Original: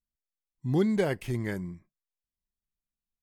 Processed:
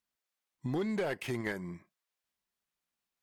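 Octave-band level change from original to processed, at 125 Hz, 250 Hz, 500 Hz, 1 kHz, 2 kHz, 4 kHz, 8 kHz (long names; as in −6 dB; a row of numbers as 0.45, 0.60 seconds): −9.0, −7.0, −6.0, −2.5, −0.5, −2.0, −3.0 decibels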